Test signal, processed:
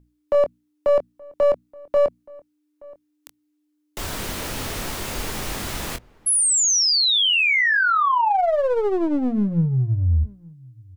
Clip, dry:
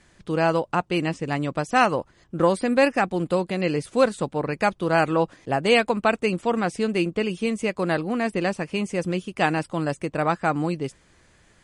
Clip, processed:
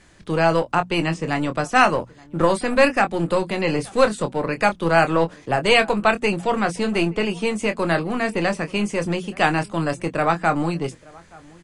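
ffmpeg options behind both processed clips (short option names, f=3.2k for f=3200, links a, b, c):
-filter_complex "[0:a]asplit=2[a][b];[b]adelay=24,volume=-9dB[c];[a][c]amix=inputs=2:normalize=0,acrossover=split=180|610|5200[d][e][f][g];[e]aeval=exprs='clip(val(0),-1,0.0237)':c=same[h];[d][h][f][g]amix=inputs=4:normalize=0,aeval=exprs='val(0)+0.00141*(sin(2*PI*60*n/s)+sin(2*PI*2*60*n/s)/2+sin(2*PI*3*60*n/s)/3+sin(2*PI*4*60*n/s)/4+sin(2*PI*5*60*n/s)/5)':c=same,bandreject=f=60:t=h:w=6,bandreject=f=120:t=h:w=6,bandreject=f=180:t=h:w=6,bandreject=f=240:t=h:w=6,asplit=2[i][j];[j]adelay=874.6,volume=-24dB,highshelf=f=4k:g=-19.7[k];[i][k]amix=inputs=2:normalize=0,volume=4dB"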